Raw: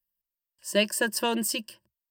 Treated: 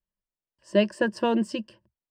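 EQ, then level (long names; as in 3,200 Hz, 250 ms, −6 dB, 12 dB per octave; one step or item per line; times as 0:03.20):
high-frequency loss of the air 120 metres
tilt shelving filter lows +6 dB, about 1,300 Hz
0.0 dB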